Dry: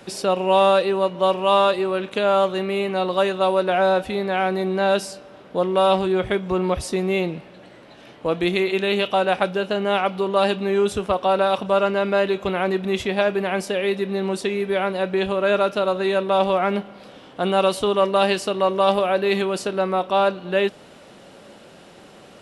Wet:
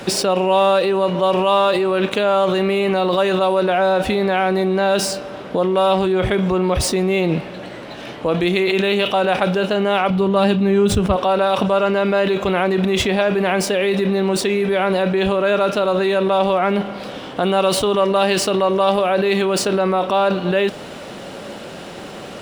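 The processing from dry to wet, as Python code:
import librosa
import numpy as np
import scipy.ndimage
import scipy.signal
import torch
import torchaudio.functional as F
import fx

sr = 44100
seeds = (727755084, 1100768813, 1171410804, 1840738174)

p1 = scipy.signal.medfilt(x, 3)
p2 = fx.bass_treble(p1, sr, bass_db=13, treble_db=-1, at=(10.1, 11.16))
p3 = fx.over_compress(p2, sr, threshold_db=-29.0, ratio=-1.0)
y = p2 + F.gain(torch.from_numpy(p3), 3.0).numpy()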